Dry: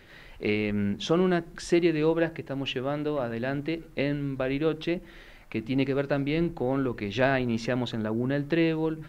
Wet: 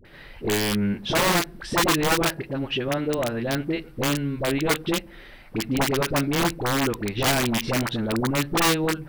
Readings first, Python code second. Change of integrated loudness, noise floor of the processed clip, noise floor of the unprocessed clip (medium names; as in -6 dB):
+4.0 dB, -46 dBFS, -50 dBFS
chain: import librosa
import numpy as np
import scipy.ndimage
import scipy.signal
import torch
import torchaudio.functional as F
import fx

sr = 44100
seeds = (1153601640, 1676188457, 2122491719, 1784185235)

y = fx.peak_eq(x, sr, hz=6800.0, db=-13.5, octaves=0.28)
y = (np.mod(10.0 ** (19.0 / 20.0) * y + 1.0, 2.0) - 1.0) / 10.0 ** (19.0 / 20.0)
y = fx.dispersion(y, sr, late='highs', ms=51.0, hz=700.0)
y = y * 10.0 ** (4.0 / 20.0)